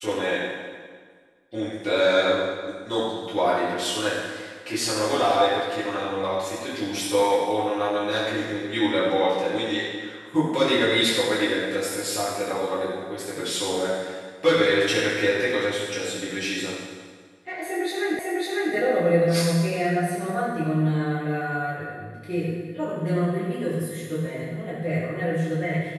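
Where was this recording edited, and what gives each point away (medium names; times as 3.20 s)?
18.19 s: repeat of the last 0.55 s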